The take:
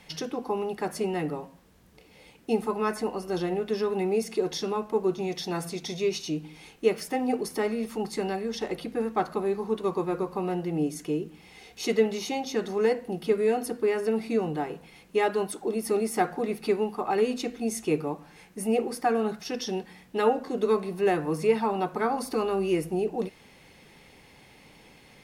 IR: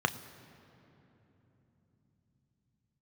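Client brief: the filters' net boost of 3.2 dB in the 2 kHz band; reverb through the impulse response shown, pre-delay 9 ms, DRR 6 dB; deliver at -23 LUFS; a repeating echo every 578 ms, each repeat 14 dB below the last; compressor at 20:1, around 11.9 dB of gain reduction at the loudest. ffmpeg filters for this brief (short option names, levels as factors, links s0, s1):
-filter_complex "[0:a]equalizer=f=2000:t=o:g=4,acompressor=threshold=0.0398:ratio=20,aecho=1:1:578|1156:0.2|0.0399,asplit=2[s0][s1];[1:a]atrim=start_sample=2205,adelay=9[s2];[s1][s2]afir=irnorm=-1:irlink=0,volume=0.168[s3];[s0][s3]amix=inputs=2:normalize=0,volume=3.16"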